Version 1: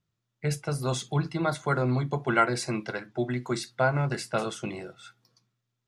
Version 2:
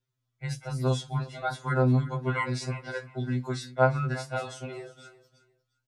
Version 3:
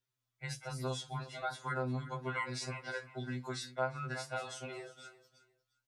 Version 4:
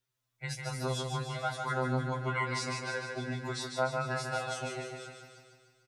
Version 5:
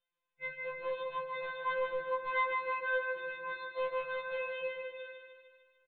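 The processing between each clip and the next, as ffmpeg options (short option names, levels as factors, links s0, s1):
-filter_complex "[0:a]acrossover=split=8200[s0][s1];[s1]acompressor=threshold=0.00282:ratio=4:attack=1:release=60[s2];[s0][s2]amix=inputs=2:normalize=0,aecho=1:1:354|708:0.133|0.0307,afftfilt=real='re*2.45*eq(mod(b,6),0)':imag='im*2.45*eq(mod(b,6),0)':win_size=2048:overlap=0.75,volume=0.891"
-af "lowshelf=f=450:g=-9.5,acompressor=threshold=0.0158:ratio=2,volume=0.891"
-af "aecho=1:1:150|300|450|600|750|900|1050|1200:0.562|0.326|0.189|0.11|0.0636|0.0369|0.0214|0.0124,volume=1.5"
-af "aresample=8000,asoftclip=type=hard:threshold=0.0316,aresample=44100,afftfilt=real='re*2.83*eq(mod(b,8),0)':imag='im*2.83*eq(mod(b,8),0)':win_size=2048:overlap=0.75"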